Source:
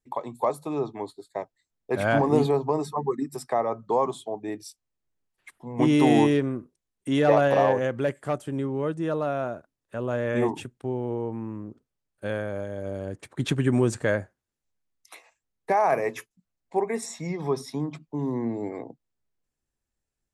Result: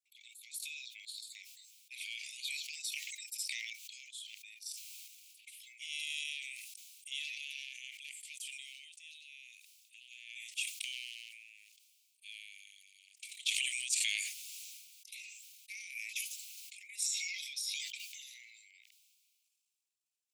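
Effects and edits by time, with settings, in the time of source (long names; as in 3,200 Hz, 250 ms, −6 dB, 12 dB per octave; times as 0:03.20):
0:03.70–0:04.66: downward compressor 2 to 1, threshold −46 dBFS
whole clip: transient designer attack +5 dB, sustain +9 dB; Butterworth high-pass 2,300 Hz 96 dB per octave; level that may fall only so fast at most 26 dB per second; level −4.5 dB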